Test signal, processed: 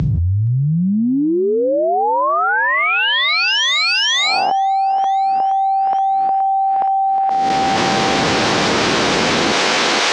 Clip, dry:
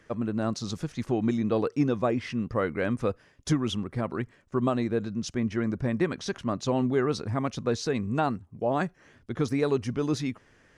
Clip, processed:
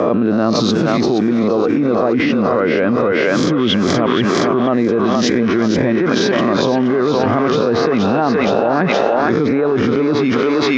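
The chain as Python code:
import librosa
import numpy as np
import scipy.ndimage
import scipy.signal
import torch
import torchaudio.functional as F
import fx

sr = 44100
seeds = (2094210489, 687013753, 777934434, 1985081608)

y = fx.spec_swells(x, sr, rise_s=0.51)
y = scipy.signal.sosfilt(scipy.signal.butter(2, 240.0, 'highpass', fs=sr, output='sos'), y)
y = fx.env_lowpass_down(y, sr, base_hz=2100.0, full_db=-22.0)
y = scipy.signal.sosfilt(scipy.signal.butter(4, 5900.0, 'lowpass', fs=sr, output='sos'), y)
y = fx.low_shelf(y, sr, hz=420.0, db=7.5)
y = fx.echo_thinned(y, sr, ms=472, feedback_pct=50, hz=640.0, wet_db=-3)
y = fx.env_flatten(y, sr, amount_pct=100)
y = y * librosa.db_to_amplitude(2.5)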